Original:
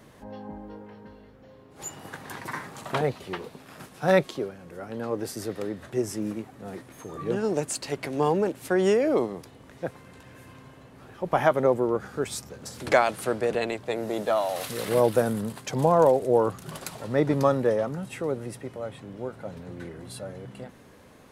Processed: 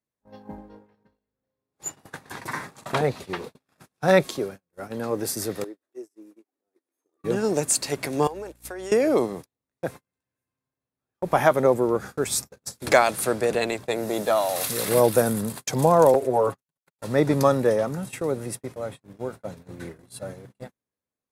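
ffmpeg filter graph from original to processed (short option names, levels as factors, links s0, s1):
-filter_complex "[0:a]asettb=1/sr,asplit=3[s0][s1][s2];[s0]atrim=end=0.584[s3];[s1]atrim=start=0.58:end=4.2,asetpts=PTS-STARTPTS,afade=t=in:d=0.004:c=qsin,afade=t=out:st=3.616:d=0.004:c=qsin,highshelf=f=9700:g=-11,acompressor=mode=upward:threshold=0.0178:ratio=2.5:attack=3.2:release=140:knee=2.83:detection=peak[s4];[s2]atrim=start=4.196[s5];[s3][s4]acrossfade=d=0.004:c1=hsin:c2=qsin[s6];[s6][s5]acrossfade=d=0.004:c1=qsin:c2=hsin,asettb=1/sr,asplit=3[s7][s8][s9];[s7]atrim=end=5.644[s10];[s8]atrim=start=5.64:end=7.24,asetpts=PTS-STARTPTS,afade=t=in:d=0.004:c=qsin,afade=t=out:st=1.596:d=0.004:c=qsin,lowshelf=f=220:t=q:w=3:g=-13,acompressor=threshold=0.00708:ratio=3:attack=3.2:release=140:knee=1:detection=peak[s11];[s9]atrim=start=7.236[s12];[s10][s11]acrossfade=d=0.004:c1=hsin:c2=qsin[s13];[s13][s12]acrossfade=d=0.004:c1=qsin:c2=hsin,asettb=1/sr,asplit=3[s14][s15][s16];[s14]atrim=end=8.274[s17];[s15]atrim=start=8.27:end=8.92,asetpts=PTS-STARTPTS,afade=t=in:d=0.004:c=qsin,afade=t=out:st=0.646:d=0.004:c=qsin,highpass=400,aeval=exprs='val(0)+0.00891*(sin(2*PI*60*n/s)+sin(2*PI*2*60*n/s)/2+sin(2*PI*3*60*n/s)/3+sin(2*PI*4*60*n/s)/4+sin(2*PI*5*60*n/s)/5)':c=same,acompressor=threshold=0.02:ratio=10:attack=3.2:release=140:knee=1:detection=peak[s18];[s16]atrim=start=8.916[s19];[s17][s18]acrossfade=d=0.004:c1=hsin:c2=qsin[s20];[s20][s19]acrossfade=d=0.004:c1=qsin:c2=hsin,asettb=1/sr,asplit=3[s21][s22][s23];[s21]atrim=end=16.144[s24];[s22]atrim=start=16.14:end=16.99,asetpts=PTS-STARTPTS,afade=t=in:d=0.004:c=qsin,afade=t=out:st=0.846:d=0.004:c=qsin,agate=range=0.00562:threshold=0.0178:ratio=16:release=100:detection=peak,aecho=1:1:7.3:0.9,atrim=end_sample=37485,acrossover=split=330|2700[s25][s26][s27];[s25]acompressor=threshold=0.0158:ratio=4[s28];[s26]acompressor=threshold=0.1:ratio=4[s29];[s27]acompressor=threshold=0.00112:ratio=4[s30];[s28][s29][s30]amix=inputs=3:normalize=0[s31];[s23]atrim=start=16.986[s32];[s24][s31]acrossfade=d=0.004:c1=hsin:c2=qsin[s33];[s33][s32]acrossfade=d=0.004:c1=qsin:c2=hsin,agate=range=0.00708:threshold=0.0126:ratio=16:detection=peak,highshelf=f=5600:g=11,bandreject=f=3000:w=13,volume=1.33"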